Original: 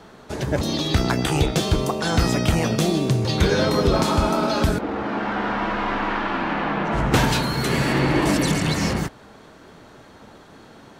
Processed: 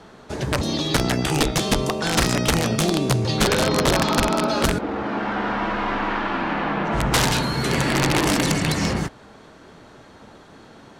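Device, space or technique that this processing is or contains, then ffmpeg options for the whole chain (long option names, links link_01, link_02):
overflowing digital effects unit: -filter_complex "[0:a]asplit=3[link_01][link_02][link_03];[link_01]afade=type=out:start_time=3.48:duration=0.02[link_04];[link_02]lowpass=frequency=5500:width=0.5412,lowpass=frequency=5500:width=1.3066,afade=type=in:start_time=3.48:duration=0.02,afade=type=out:start_time=4.47:duration=0.02[link_05];[link_03]afade=type=in:start_time=4.47:duration=0.02[link_06];[link_04][link_05][link_06]amix=inputs=3:normalize=0,aeval=exprs='(mod(3.76*val(0)+1,2)-1)/3.76':channel_layout=same,lowpass=11000"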